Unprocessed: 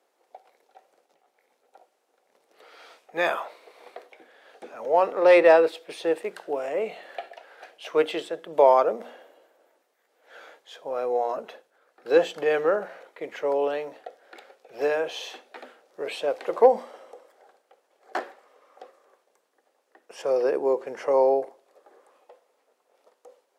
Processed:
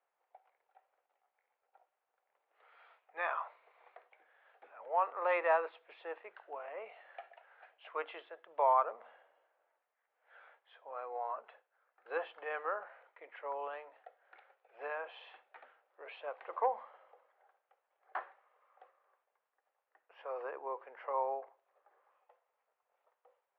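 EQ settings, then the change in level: air absorption 410 m; dynamic EQ 1100 Hz, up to +7 dB, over -43 dBFS, Q 2.7; Butterworth band-pass 1600 Hz, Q 0.64; -8.0 dB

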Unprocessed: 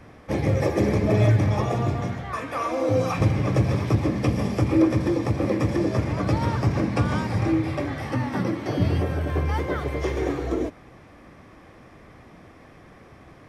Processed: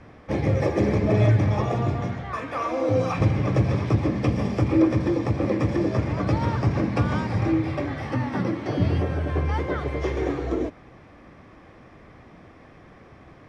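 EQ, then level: air absorption 72 m; 0.0 dB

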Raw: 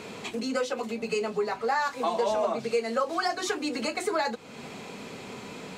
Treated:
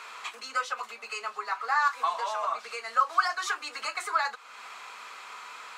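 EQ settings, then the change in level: resonant high-pass 1200 Hz, resonance Q 3.4; -2.5 dB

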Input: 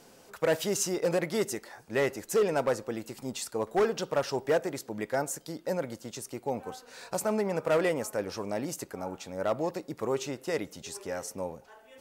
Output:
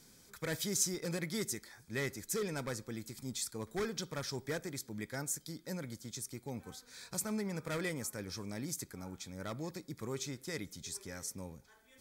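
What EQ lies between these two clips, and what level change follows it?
Butterworth band-stop 2800 Hz, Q 6; passive tone stack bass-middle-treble 6-0-2; +13.5 dB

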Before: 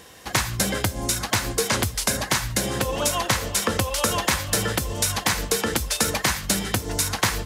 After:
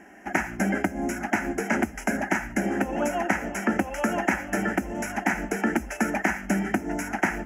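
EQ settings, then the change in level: running mean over 10 samples; resonant low shelf 130 Hz -9 dB, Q 3; fixed phaser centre 730 Hz, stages 8; +3.5 dB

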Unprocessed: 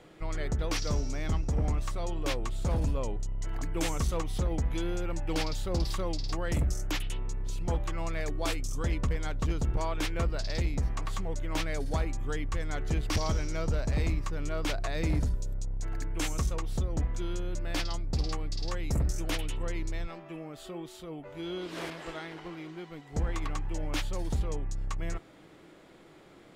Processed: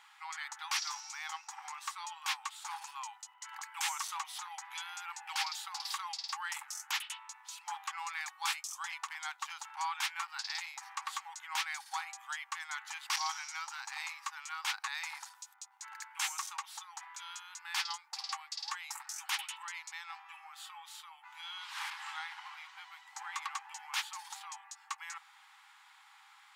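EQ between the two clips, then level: brick-wall FIR high-pass 770 Hz; +1.5 dB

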